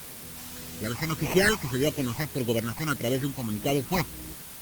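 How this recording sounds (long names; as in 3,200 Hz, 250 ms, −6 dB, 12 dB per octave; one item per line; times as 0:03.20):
aliases and images of a low sample rate 3,500 Hz, jitter 0%
phaser sweep stages 8, 1.7 Hz, lowest notch 430–1,500 Hz
a quantiser's noise floor 8 bits, dither triangular
Opus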